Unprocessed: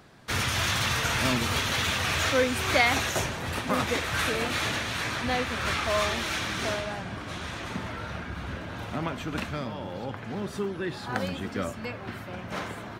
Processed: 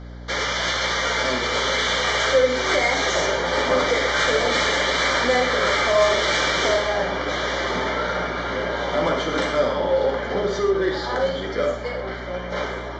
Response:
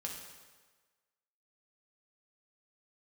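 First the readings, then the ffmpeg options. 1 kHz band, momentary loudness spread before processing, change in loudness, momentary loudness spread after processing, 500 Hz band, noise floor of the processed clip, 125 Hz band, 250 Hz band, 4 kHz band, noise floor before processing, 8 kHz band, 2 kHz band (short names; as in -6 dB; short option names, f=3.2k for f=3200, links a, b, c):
+7.5 dB, 12 LU, +7.5 dB, 7 LU, +12.0 dB, -31 dBFS, -1.0 dB, +3.0 dB, +7.0 dB, -40 dBFS, +3.5 dB, +6.5 dB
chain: -filter_complex "[0:a]highpass=380,equalizer=f=400:t=q:w=4:g=8,equalizer=f=570:t=q:w=4:g=7,equalizer=f=2.3k:t=q:w=4:g=3,lowpass=f=6.2k:w=0.5412,lowpass=f=6.2k:w=1.3066,alimiter=limit=-18dB:level=0:latency=1:release=409,dynaudnorm=f=260:g=17:m=6dB,aresample=16000,asoftclip=type=tanh:threshold=-22dB,aresample=44100,asuperstop=centerf=2600:order=12:qfactor=5[a];[1:a]atrim=start_sample=2205,afade=t=out:st=0.19:d=0.01,atrim=end_sample=8820[b];[a][b]afir=irnorm=-1:irlink=0,aeval=exprs='val(0)+0.00631*(sin(2*PI*60*n/s)+sin(2*PI*2*60*n/s)/2+sin(2*PI*3*60*n/s)/3+sin(2*PI*4*60*n/s)/4+sin(2*PI*5*60*n/s)/5)':c=same,volume=8.5dB"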